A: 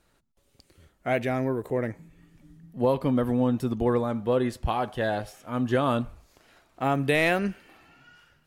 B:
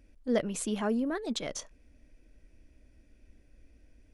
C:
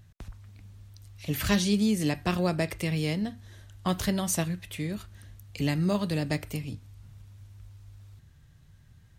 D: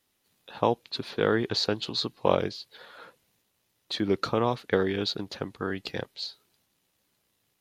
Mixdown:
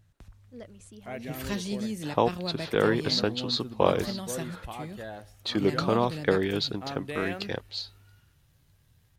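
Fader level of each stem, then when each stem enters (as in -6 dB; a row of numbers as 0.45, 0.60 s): -13.0, -17.0, -8.0, +0.5 dB; 0.00, 0.25, 0.00, 1.55 s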